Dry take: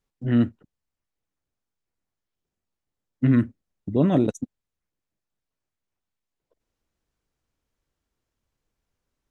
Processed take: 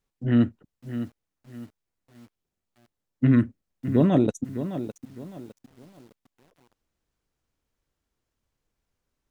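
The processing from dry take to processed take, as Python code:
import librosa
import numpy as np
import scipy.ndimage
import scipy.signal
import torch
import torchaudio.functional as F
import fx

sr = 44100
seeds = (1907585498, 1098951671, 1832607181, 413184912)

y = fx.echo_crushed(x, sr, ms=609, feedback_pct=35, bits=8, wet_db=-11.0)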